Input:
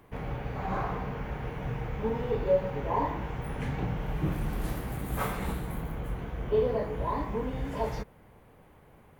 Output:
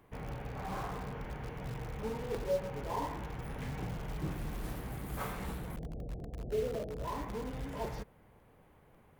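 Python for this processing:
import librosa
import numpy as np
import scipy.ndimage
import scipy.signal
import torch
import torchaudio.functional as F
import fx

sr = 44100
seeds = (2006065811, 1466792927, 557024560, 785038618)

p1 = fx.steep_lowpass(x, sr, hz=730.0, slope=72, at=(5.76, 7.05))
p2 = (np.mod(10.0 ** (28.0 / 20.0) * p1 + 1.0, 2.0) - 1.0) / 10.0 ** (28.0 / 20.0)
p3 = p1 + (p2 * librosa.db_to_amplitude(-11.0))
p4 = fx.buffer_crackle(p3, sr, first_s=0.69, period_s=0.55, block=256, kind='repeat')
y = p4 * librosa.db_to_amplitude(-8.0)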